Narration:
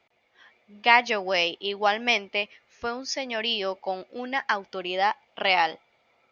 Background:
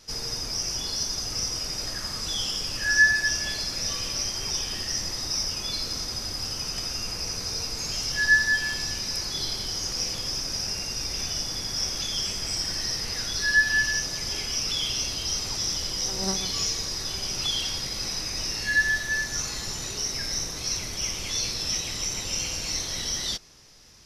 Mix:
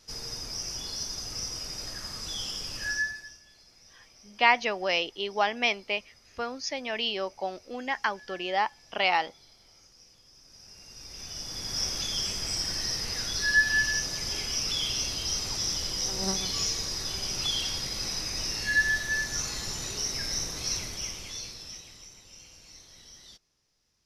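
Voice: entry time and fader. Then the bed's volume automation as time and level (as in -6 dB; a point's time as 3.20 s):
3.55 s, -3.0 dB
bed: 2.87 s -6 dB
3.43 s -27.5 dB
10.30 s -27.5 dB
11.77 s -2 dB
20.76 s -2 dB
22.20 s -21.5 dB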